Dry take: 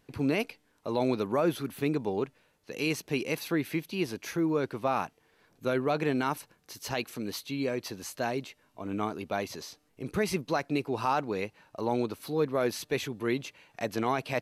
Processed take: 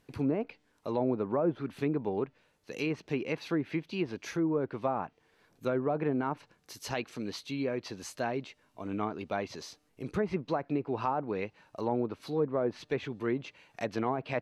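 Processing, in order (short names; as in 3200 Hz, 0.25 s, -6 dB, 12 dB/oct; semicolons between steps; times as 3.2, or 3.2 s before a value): treble ducked by the level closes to 900 Hz, closed at -23 dBFS; gain -1.5 dB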